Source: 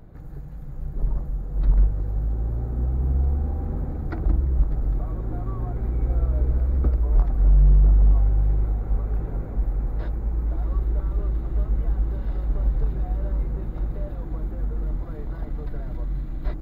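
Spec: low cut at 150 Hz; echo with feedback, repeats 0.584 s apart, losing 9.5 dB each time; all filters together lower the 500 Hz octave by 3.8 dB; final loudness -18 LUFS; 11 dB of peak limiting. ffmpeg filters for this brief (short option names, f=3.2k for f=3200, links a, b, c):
-af "highpass=150,equalizer=f=500:t=o:g=-5,alimiter=level_in=7dB:limit=-24dB:level=0:latency=1,volume=-7dB,aecho=1:1:584|1168|1752|2336:0.335|0.111|0.0365|0.012,volume=22.5dB"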